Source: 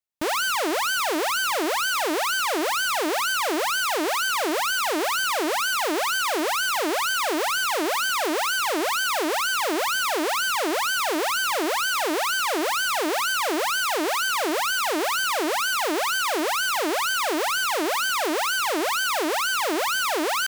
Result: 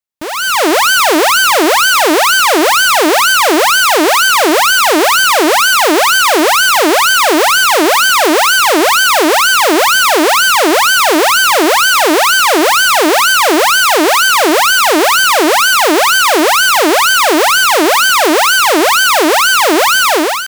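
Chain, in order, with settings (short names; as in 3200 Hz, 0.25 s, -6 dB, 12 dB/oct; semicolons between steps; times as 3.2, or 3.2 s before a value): AGC gain up to 14 dB; gain +1.5 dB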